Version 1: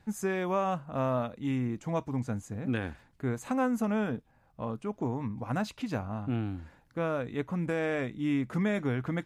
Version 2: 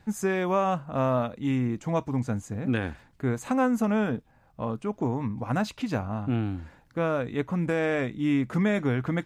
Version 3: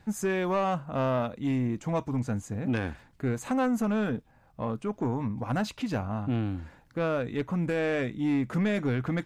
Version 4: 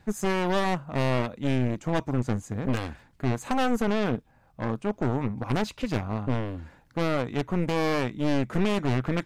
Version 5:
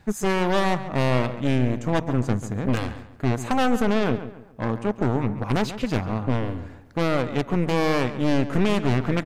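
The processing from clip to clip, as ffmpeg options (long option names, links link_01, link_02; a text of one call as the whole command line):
ffmpeg -i in.wav -af "equalizer=frequency=11000:width_type=o:width=0.26:gain=-4,volume=4.5dB" out.wav
ffmpeg -i in.wav -af "asoftclip=type=tanh:threshold=-20dB" out.wav
ffmpeg -i in.wav -af "aeval=exprs='0.1*(cos(1*acos(clip(val(0)/0.1,-1,1)))-cos(1*PI/2))+0.0501*(cos(4*acos(clip(val(0)/0.1,-1,1)))-cos(4*PI/2))+0.0251*(cos(6*acos(clip(val(0)/0.1,-1,1)))-cos(6*PI/2))':channel_layout=same" out.wav
ffmpeg -i in.wav -filter_complex "[0:a]asplit=2[link_01][link_02];[link_02]adelay=139,lowpass=frequency=2900:poles=1,volume=-12dB,asplit=2[link_03][link_04];[link_04]adelay=139,lowpass=frequency=2900:poles=1,volume=0.36,asplit=2[link_05][link_06];[link_06]adelay=139,lowpass=frequency=2900:poles=1,volume=0.36,asplit=2[link_07][link_08];[link_08]adelay=139,lowpass=frequency=2900:poles=1,volume=0.36[link_09];[link_01][link_03][link_05][link_07][link_09]amix=inputs=5:normalize=0,volume=3.5dB" out.wav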